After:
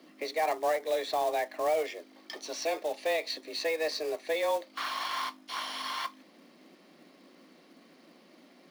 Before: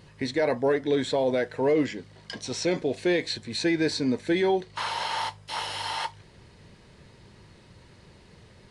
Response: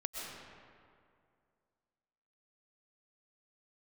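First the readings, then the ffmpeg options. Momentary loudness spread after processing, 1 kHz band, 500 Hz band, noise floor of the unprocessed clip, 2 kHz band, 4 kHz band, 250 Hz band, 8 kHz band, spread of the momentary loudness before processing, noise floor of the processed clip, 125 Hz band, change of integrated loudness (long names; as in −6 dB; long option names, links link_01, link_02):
8 LU, −0.5 dB, −5.0 dB, −54 dBFS, −4.0 dB, −4.5 dB, −18.5 dB, −3.5 dB, 8 LU, −59 dBFS, below −25 dB, −5.0 dB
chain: -filter_complex "[0:a]acrossover=split=340[link_01][link_02];[link_01]acompressor=threshold=-42dB:ratio=1.5[link_03];[link_03][link_02]amix=inputs=2:normalize=0,equalizer=frequency=7800:width_type=o:width=0.3:gain=-13,afreqshift=160,asubboost=boost=3:cutoff=100,acrusher=bits=4:mode=log:mix=0:aa=0.000001,volume=-4dB"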